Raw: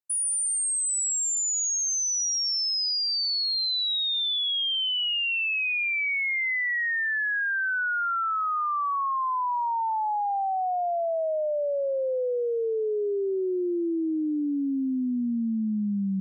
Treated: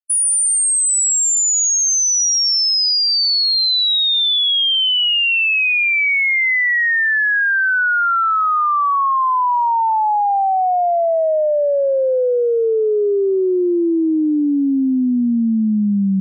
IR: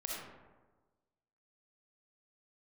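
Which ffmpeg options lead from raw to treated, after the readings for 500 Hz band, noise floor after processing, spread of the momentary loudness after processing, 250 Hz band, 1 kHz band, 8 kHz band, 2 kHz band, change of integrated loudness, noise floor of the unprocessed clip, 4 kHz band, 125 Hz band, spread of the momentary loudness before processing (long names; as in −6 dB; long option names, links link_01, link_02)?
+11.0 dB, −16 dBFS, 4 LU, +11.0 dB, +11.0 dB, +11.0 dB, +11.0 dB, +11.0 dB, −27 dBFS, +11.0 dB, can't be measured, 4 LU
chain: -af "afftfilt=real='re*gte(hypot(re,im),0.0251)':imag='im*gte(hypot(re,im),0.0251)':win_size=1024:overlap=0.75,acontrast=64,volume=4.5dB"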